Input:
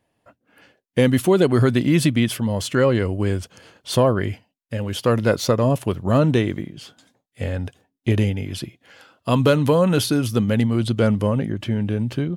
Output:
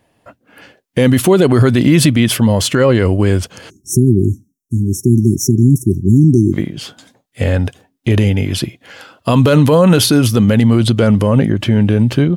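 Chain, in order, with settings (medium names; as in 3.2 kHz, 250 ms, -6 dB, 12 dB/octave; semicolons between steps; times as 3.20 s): spectral selection erased 3.70–6.53 s, 390–5400 Hz; loudness maximiser +12.5 dB; trim -1 dB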